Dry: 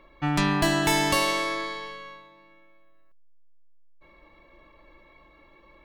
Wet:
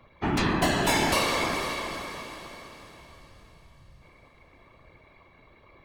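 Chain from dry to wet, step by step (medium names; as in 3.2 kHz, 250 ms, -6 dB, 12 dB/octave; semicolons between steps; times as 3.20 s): whisper effect; echo that smears into a reverb 471 ms, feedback 44%, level -9 dB; trim -1.5 dB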